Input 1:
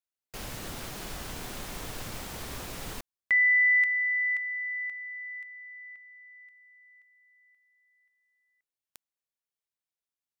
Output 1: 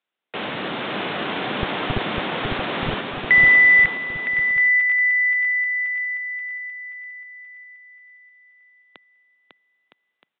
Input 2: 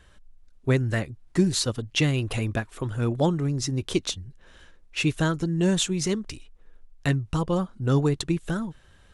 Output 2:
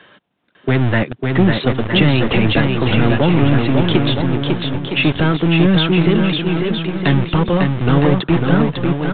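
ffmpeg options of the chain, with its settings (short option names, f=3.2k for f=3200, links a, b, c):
-filter_complex "[0:a]acrossover=split=150[a][b];[b]acompressor=threshold=-26dB:ratio=3:attack=3.4:release=54:knee=2.83:detection=peak[c];[a][c]amix=inputs=2:normalize=0,acrossover=split=160[d][e];[d]acrusher=bits=3:dc=4:mix=0:aa=0.000001[f];[f][e]amix=inputs=2:normalize=0,apsyclip=16.5dB,asoftclip=type=tanh:threshold=-4.5dB,asplit=2[g][h];[h]aecho=0:1:550|962.5|1272|1504|1678:0.631|0.398|0.251|0.158|0.1[i];[g][i]amix=inputs=2:normalize=0,aresample=8000,aresample=44100,volume=-1.5dB"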